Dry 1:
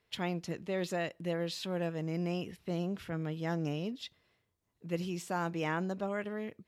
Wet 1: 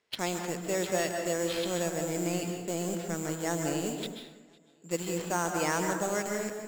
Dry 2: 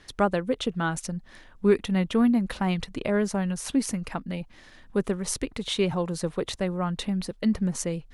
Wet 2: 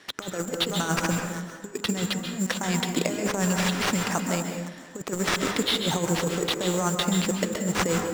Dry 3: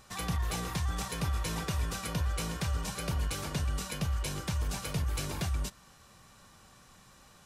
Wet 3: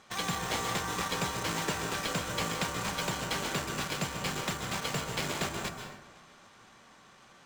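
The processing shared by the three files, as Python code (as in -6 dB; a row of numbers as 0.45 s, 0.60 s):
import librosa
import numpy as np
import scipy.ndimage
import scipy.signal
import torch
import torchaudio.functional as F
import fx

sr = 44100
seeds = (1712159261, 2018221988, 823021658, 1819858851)

p1 = scipy.signal.sosfilt(scipy.signal.butter(2, 220.0, 'highpass', fs=sr, output='sos'), x)
p2 = p1 + fx.echo_feedback(p1, sr, ms=510, feedback_pct=32, wet_db=-20.5, dry=0)
p3 = (np.kron(p2[::6], np.eye(6)[0]) * 6)[:len(p2)]
p4 = scipy.signal.sosfilt(scipy.signal.butter(2, 3500.0, 'lowpass', fs=sr, output='sos'), p3)
p5 = fx.quant_dither(p4, sr, seeds[0], bits=6, dither='none')
p6 = p4 + (p5 * librosa.db_to_amplitude(-5.0))
p7 = fx.over_compress(p6, sr, threshold_db=-26.0, ratio=-0.5)
y = fx.rev_plate(p7, sr, seeds[1], rt60_s=0.97, hf_ratio=0.5, predelay_ms=120, drr_db=3.5)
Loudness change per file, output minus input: +4.5 LU, +1.0 LU, +1.5 LU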